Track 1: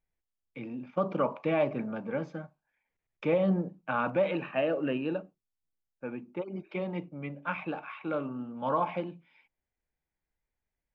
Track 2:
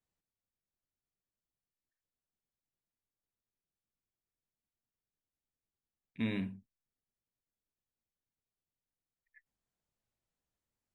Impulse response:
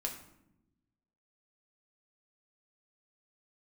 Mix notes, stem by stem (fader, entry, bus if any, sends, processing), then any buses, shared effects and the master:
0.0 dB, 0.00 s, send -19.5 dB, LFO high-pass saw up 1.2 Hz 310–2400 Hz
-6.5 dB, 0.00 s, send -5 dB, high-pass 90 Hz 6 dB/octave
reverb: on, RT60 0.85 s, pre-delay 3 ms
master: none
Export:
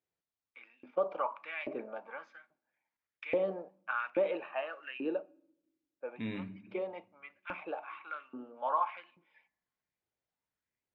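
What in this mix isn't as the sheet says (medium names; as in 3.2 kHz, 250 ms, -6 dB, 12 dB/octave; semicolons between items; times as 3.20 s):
stem 1 0.0 dB -> -7.0 dB; master: extra distance through air 73 m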